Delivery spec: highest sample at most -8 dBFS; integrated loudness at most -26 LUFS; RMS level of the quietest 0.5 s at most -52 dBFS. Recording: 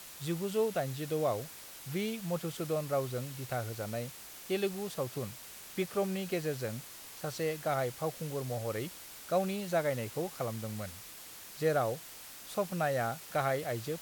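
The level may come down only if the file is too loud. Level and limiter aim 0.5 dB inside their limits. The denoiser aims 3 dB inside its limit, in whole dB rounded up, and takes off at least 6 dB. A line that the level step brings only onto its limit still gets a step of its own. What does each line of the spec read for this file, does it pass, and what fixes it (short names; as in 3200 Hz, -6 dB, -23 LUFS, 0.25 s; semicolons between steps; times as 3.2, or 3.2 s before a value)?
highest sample -18.5 dBFS: OK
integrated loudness -35.0 LUFS: OK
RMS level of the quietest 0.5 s -49 dBFS: fail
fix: denoiser 6 dB, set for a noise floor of -49 dBFS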